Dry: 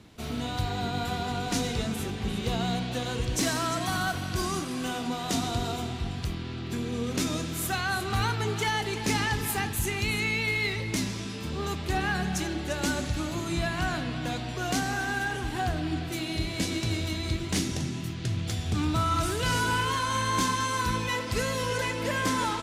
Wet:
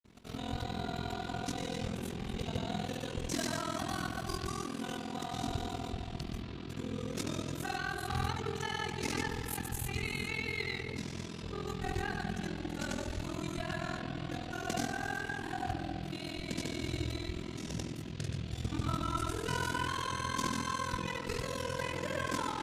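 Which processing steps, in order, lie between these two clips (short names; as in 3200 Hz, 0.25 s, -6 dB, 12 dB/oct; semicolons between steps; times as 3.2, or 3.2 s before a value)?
grains 0.1 s, grains 20/s, pitch spread up and down by 0 st; tape echo 68 ms, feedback 85%, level -5 dB, low-pass 1300 Hz; ring modulator 21 Hz; gain -4.5 dB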